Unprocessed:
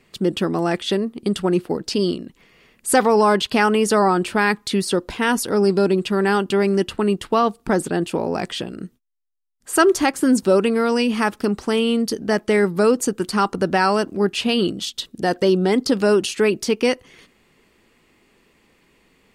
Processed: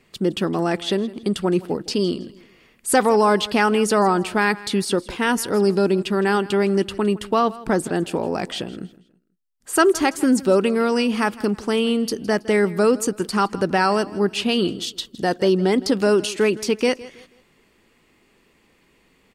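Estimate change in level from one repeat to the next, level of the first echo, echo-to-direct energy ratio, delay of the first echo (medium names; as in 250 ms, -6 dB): -9.5 dB, -19.0 dB, -18.5 dB, 162 ms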